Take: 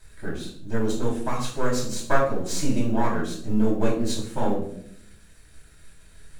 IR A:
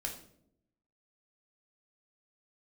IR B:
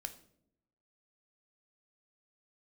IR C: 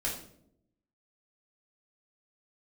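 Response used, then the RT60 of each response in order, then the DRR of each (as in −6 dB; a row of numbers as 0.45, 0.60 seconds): C; 0.70, 0.75, 0.70 seconds; 0.0, 7.0, −6.0 decibels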